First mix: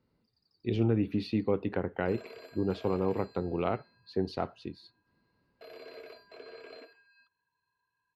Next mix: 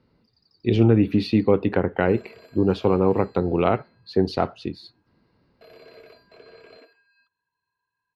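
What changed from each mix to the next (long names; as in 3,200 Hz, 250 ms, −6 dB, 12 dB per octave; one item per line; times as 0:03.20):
speech +10.5 dB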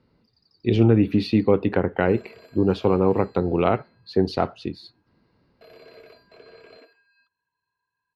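nothing changed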